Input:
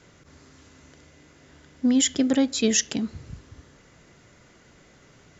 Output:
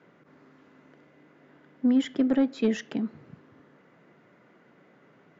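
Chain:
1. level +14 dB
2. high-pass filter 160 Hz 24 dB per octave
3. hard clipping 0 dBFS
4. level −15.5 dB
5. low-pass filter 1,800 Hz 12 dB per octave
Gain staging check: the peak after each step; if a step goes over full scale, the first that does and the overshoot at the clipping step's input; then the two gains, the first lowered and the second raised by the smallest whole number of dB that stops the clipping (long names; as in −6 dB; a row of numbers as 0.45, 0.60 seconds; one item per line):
+4.5, +4.5, 0.0, −15.5, −15.5 dBFS
step 1, 4.5 dB
step 1 +9 dB, step 4 −10.5 dB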